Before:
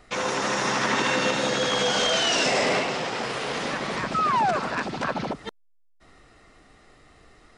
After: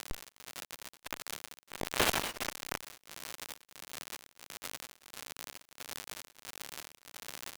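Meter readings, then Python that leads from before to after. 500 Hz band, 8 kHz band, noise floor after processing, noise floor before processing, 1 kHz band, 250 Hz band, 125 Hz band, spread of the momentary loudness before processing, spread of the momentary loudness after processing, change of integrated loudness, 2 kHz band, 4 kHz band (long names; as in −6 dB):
−18.0 dB, −9.0 dB, below −85 dBFS, −59 dBFS, −18.0 dB, −18.0 dB, −15.0 dB, 8 LU, 15 LU, −16.0 dB, −14.5 dB, −14.5 dB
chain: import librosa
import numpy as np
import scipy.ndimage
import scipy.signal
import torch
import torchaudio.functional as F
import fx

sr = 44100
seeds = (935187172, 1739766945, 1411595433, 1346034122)

y = fx.rider(x, sr, range_db=3, speed_s=0.5)
y = fx.weighting(y, sr, curve='D')
y = fx.tube_stage(y, sr, drive_db=27.0, bias=0.45)
y = fx.schmitt(y, sr, flips_db=-27.0)
y = fx.dmg_crackle(y, sr, seeds[0], per_s=120.0, level_db=-31.0)
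y = fx.low_shelf(y, sr, hz=200.0, db=-5.0)
y = y * np.abs(np.cos(np.pi * 1.5 * np.arange(len(y)) / sr))
y = y * 10.0 ** (9.5 / 20.0)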